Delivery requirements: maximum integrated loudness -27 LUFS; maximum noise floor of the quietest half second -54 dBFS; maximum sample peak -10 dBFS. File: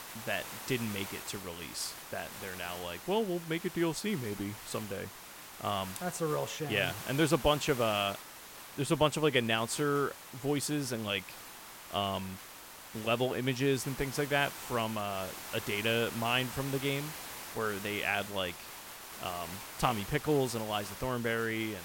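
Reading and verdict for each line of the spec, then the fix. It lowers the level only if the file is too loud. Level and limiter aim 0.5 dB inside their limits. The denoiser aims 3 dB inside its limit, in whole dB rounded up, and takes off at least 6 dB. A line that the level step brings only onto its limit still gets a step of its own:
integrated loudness -33.5 LUFS: pass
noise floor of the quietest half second -50 dBFS: fail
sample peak -12.5 dBFS: pass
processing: noise reduction 7 dB, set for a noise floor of -50 dBFS

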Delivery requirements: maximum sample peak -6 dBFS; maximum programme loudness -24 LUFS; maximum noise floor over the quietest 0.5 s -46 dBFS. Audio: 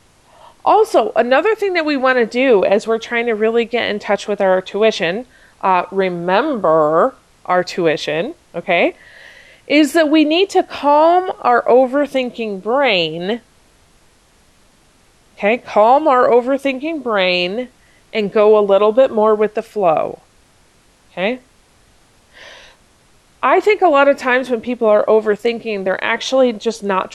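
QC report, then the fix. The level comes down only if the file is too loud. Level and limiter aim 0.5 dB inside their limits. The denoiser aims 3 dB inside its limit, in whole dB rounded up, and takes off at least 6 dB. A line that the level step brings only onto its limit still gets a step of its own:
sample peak -2.0 dBFS: fail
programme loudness -15.0 LUFS: fail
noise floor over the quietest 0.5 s -52 dBFS: pass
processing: trim -9.5 dB

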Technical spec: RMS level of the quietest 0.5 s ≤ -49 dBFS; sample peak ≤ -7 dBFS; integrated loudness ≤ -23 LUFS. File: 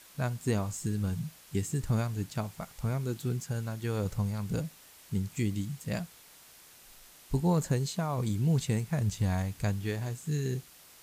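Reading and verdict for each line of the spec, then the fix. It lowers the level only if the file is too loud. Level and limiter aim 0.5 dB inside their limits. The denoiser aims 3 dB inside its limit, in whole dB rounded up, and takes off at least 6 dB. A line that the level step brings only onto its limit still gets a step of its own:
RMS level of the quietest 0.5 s -55 dBFS: pass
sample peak -16.0 dBFS: pass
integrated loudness -32.5 LUFS: pass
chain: none needed

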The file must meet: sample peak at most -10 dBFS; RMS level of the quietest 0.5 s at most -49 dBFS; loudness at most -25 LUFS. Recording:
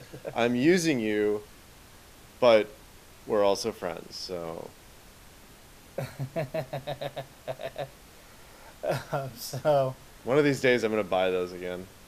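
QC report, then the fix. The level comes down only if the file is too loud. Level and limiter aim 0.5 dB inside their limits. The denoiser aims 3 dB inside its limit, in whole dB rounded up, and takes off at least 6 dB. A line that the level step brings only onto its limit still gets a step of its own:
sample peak -7.5 dBFS: fail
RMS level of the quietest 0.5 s -52 dBFS: pass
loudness -28.0 LUFS: pass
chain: peak limiter -10.5 dBFS

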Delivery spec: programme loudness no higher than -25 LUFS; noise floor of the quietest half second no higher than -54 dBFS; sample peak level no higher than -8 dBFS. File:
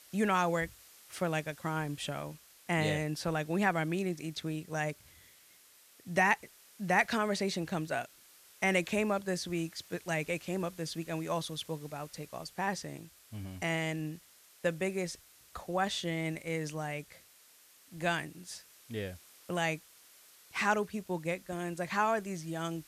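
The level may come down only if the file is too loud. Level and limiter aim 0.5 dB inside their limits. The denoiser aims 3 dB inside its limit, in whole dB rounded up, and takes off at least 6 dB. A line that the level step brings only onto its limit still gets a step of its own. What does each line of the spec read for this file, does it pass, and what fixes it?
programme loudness -34.0 LUFS: pass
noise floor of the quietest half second -61 dBFS: pass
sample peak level -14.5 dBFS: pass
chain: none needed

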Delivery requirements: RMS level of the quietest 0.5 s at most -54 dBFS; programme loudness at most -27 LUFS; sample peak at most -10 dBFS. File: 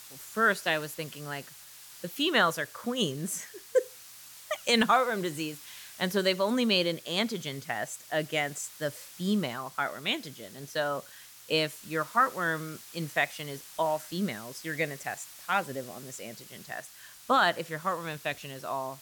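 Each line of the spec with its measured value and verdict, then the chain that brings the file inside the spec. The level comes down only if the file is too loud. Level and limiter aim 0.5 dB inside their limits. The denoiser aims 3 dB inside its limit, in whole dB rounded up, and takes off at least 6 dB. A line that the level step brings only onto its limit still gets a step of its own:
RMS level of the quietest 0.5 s -50 dBFS: fail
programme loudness -30.0 LUFS: pass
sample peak -12.0 dBFS: pass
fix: noise reduction 7 dB, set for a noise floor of -50 dBFS

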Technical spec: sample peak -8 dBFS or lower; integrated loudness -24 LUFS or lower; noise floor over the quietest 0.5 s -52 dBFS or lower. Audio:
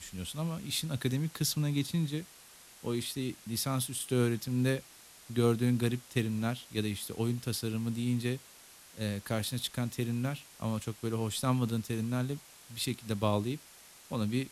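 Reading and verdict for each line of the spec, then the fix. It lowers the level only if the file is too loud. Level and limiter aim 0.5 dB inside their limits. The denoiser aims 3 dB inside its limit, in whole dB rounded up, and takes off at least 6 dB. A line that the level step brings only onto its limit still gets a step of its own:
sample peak -14.5 dBFS: pass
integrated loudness -33.5 LUFS: pass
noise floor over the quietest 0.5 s -55 dBFS: pass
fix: none needed

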